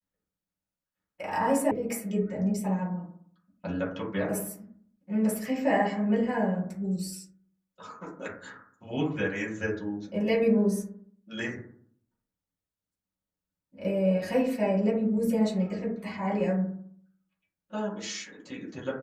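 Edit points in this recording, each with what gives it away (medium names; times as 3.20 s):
1.71 s: sound stops dead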